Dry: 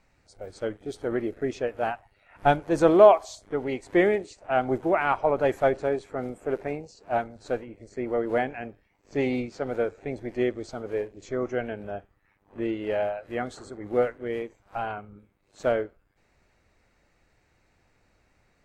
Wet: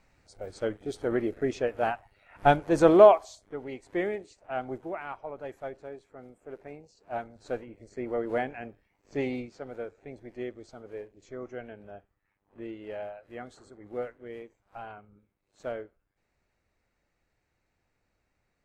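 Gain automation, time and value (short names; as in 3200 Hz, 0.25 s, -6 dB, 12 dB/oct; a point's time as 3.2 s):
3.01 s 0 dB
3.43 s -9 dB
4.61 s -9 dB
5.22 s -16 dB
6.38 s -16 dB
7.59 s -4 dB
9.18 s -4 dB
9.7 s -11 dB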